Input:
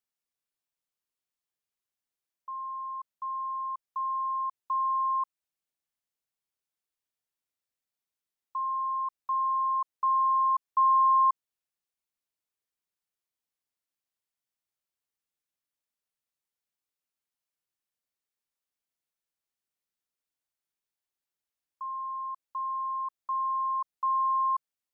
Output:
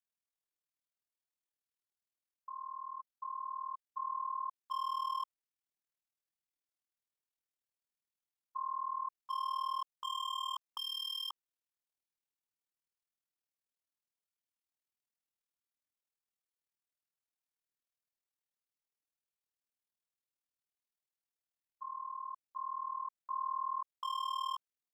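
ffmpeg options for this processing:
ffmpeg -i in.wav -af "aeval=exprs='0.0501*(abs(mod(val(0)/0.0501+3,4)-2)-1)':channel_layout=same,tremolo=f=39:d=0.889,volume=-4dB" out.wav

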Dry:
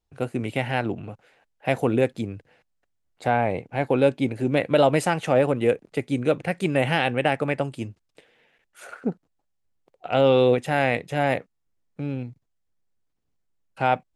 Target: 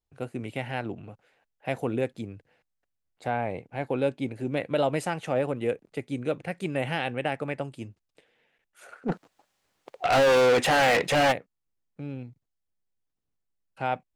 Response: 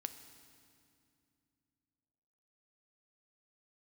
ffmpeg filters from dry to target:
-filter_complex "[0:a]asplit=3[link_01][link_02][link_03];[link_01]afade=type=out:start_time=9.08:duration=0.02[link_04];[link_02]asplit=2[link_05][link_06];[link_06]highpass=frequency=720:poles=1,volume=33dB,asoftclip=type=tanh:threshold=-6.5dB[link_07];[link_05][link_07]amix=inputs=2:normalize=0,lowpass=frequency=4800:poles=1,volume=-6dB,afade=type=in:start_time=9.08:duration=0.02,afade=type=out:start_time=11.31:duration=0.02[link_08];[link_03]afade=type=in:start_time=11.31:duration=0.02[link_09];[link_04][link_08][link_09]amix=inputs=3:normalize=0,volume=-7dB"

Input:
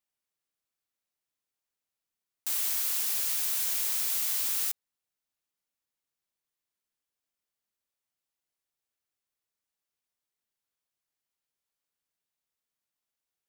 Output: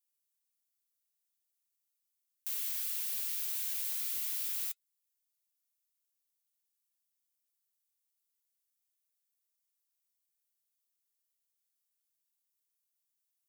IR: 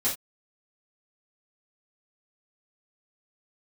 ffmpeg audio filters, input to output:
-filter_complex "[0:a]aderivative,acrossover=split=3600[link_01][link_02];[link_02]acompressor=threshold=-36dB:ratio=4:attack=1:release=60[link_03];[link_01][link_03]amix=inputs=2:normalize=0,flanger=delay=4.1:depth=5.8:regen=68:speed=0.84:shape=triangular,volume=6.5dB"

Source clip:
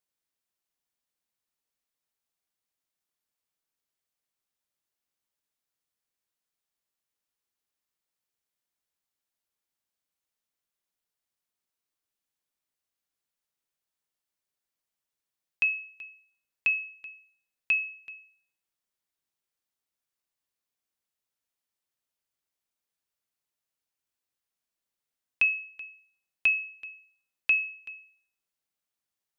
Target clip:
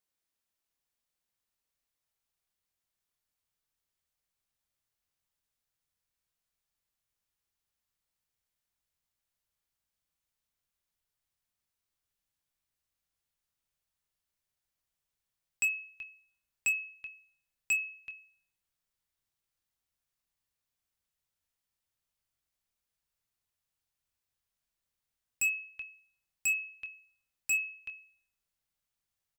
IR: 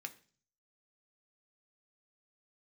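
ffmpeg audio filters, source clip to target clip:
-filter_complex "[0:a]asubboost=boost=3.5:cutoff=140,aeval=exprs='0.0794*(abs(mod(val(0)/0.0794+3,4)-2)-1)':channel_layout=same,asplit=2[link_01][link_02];[link_02]adelay=25,volume=-11.5dB[link_03];[link_01][link_03]amix=inputs=2:normalize=0"

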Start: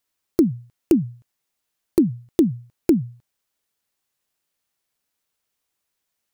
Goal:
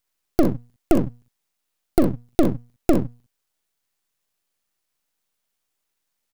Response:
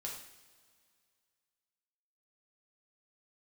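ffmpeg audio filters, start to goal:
-af "aecho=1:1:41|62:0.266|0.335,aeval=exprs='max(val(0),0)':channel_layout=same,volume=3.5dB"

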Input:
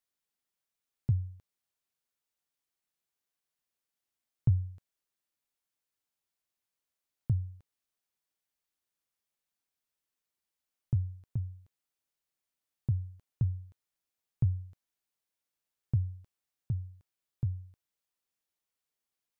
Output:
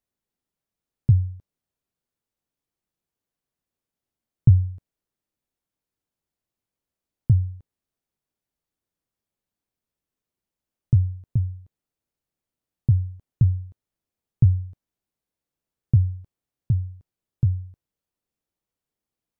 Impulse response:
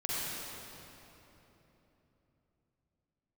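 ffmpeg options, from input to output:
-af "tiltshelf=frequency=670:gain=7.5,volume=4.5dB"

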